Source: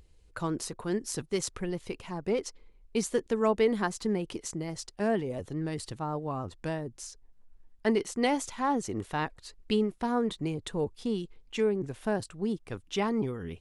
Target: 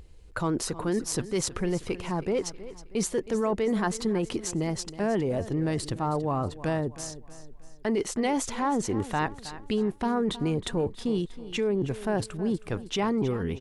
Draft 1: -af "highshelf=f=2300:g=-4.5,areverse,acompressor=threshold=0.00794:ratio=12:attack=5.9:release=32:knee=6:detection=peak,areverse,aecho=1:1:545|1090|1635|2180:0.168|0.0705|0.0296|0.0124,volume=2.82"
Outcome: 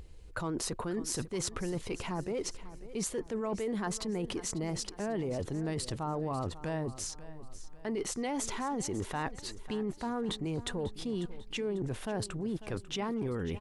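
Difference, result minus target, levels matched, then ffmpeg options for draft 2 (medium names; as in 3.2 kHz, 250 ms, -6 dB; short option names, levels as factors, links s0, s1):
echo 227 ms late; compression: peak gain reduction +8.5 dB
-af "highshelf=f=2300:g=-4.5,areverse,acompressor=threshold=0.0224:ratio=12:attack=5.9:release=32:knee=6:detection=peak,areverse,aecho=1:1:318|636|954|1272:0.168|0.0705|0.0296|0.0124,volume=2.82"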